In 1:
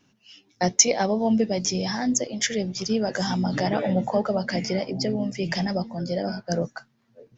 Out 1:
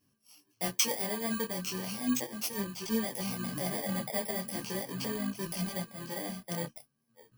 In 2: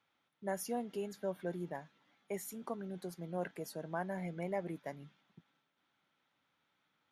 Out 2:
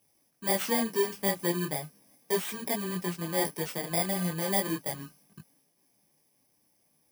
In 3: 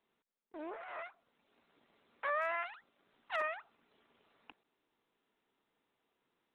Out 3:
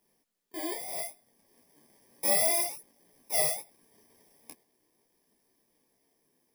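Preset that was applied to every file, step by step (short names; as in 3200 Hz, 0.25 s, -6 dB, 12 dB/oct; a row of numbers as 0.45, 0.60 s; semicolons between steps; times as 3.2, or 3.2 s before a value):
FFT order left unsorted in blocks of 32 samples; detuned doubles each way 13 cents; normalise peaks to -12 dBFS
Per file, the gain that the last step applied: -6.0, +14.0, +13.5 dB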